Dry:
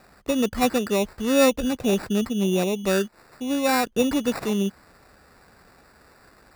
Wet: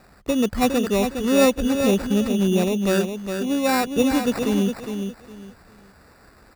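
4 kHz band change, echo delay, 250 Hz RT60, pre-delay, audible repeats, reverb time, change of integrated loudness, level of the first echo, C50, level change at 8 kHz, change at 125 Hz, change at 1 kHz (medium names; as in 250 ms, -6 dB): +1.0 dB, 410 ms, no reverb, no reverb, 3, no reverb, +2.0 dB, -7.0 dB, no reverb, +1.0 dB, +4.0 dB, +1.0 dB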